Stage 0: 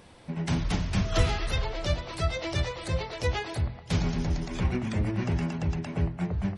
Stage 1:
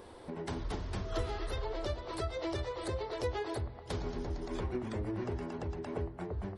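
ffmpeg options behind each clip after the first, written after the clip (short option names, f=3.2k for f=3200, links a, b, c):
-af "acompressor=threshold=-37dB:ratio=2.5,equalizer=f=160:t=o:w=0.67:g=-11,equalizer=f=400:t=o:w=0.67:g=9,equalizer=f=1k:t=o:w=0.67:g=3,equalizer=f=2.5k:t=o:w=0.67:g=-7,equalizer=f=6.3k:t=o:w=0.67:g=-6"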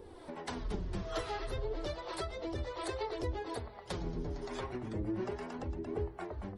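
-filter_complex "[0:a]flanger=delay=2.2:depth=5.6:regen=33:speed=0.33:shape=triangular,acrossover=split=470[a][b];[a]aeval=exprs='val(0)*(1-0.7/2+0.7/2*cos(2*PI*1.2*n/s))':c=same[c];[b]aeval=exprs='val(0)*(1-0.7/2-0.7/2*cos(2*PI*1.2*n/s))':c=same[d];[c][d]amix=inputs=2:normalize=0,volume=6.5dB"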